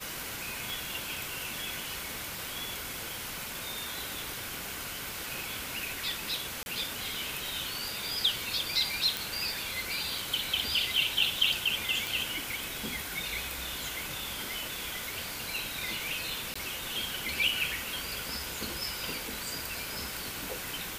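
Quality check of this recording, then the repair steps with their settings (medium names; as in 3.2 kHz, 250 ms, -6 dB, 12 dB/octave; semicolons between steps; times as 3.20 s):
0.70 s: pop
6.63–6.66 s: dropout 31 ms
9.17 s: pop
12.07 s: pop
16.54–16.55 s: dropout 15 ms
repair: de-click; interpolate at 6.63 s, 31 ms; interpolate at 16.54 s, 15 ms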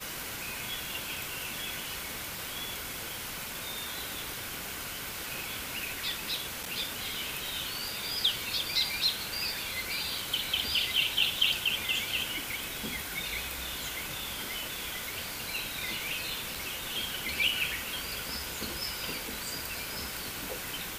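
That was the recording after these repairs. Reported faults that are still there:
nothing left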